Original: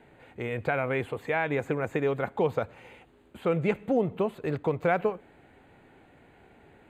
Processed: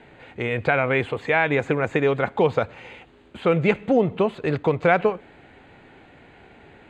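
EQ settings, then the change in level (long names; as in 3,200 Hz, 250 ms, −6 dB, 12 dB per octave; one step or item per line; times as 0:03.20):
high-frequency loss of the air 130 metres
high-shelf EQ 2,500 Hz +11 dB
+6.5 dB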